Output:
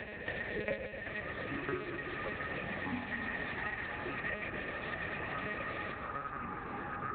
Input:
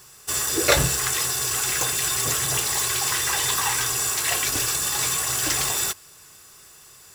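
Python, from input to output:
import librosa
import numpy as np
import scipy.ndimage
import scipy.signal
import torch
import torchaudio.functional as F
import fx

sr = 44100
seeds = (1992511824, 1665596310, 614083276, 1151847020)

y = fx.formant_cascade(x, sr, vowel='e')
y = fx.low_shelf(y, sr, hz=100.0, db=4.5)
y = fx.echo_feedback(y, sr, ms=124, feedback_pct=46, wet_db=-9.0)
y = fx.lpc_monotone(y, sr, seeds[0], pitch_hz=210.0, order=8)
y = fx.echo_pitch(y, sr, ms=667, semitones=-7, count=2, db_per_echo=-6.0)
y = scipy.signal.sosfilt(scipy.signal.butter(2, 64.0, 'highpass', fs=sr, output='sos'), y)
y = fx.high_shelf(y, sr, hz=2000.0, db=7.0)
y = fx.band_squash(y, sr, depth_pct=100)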